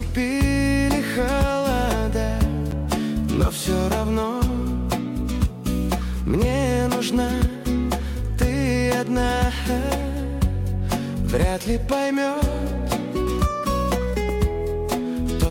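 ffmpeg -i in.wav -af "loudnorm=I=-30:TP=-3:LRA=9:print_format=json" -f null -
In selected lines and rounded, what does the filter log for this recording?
"input_i" : "-23.0",
"input_tp" : "-8.9",
"input_lra" : "1.6",
"input_thresh" : "-33.0",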